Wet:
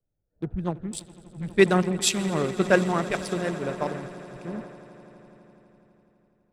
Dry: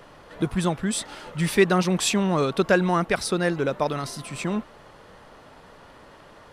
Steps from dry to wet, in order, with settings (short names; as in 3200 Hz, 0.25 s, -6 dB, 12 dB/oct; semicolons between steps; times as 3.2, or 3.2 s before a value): Wiener smoothing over 41 samples; swelling echo 83 ms, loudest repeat 8, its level -16.5 dB; three-band expander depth 100%; gain -4.5 dB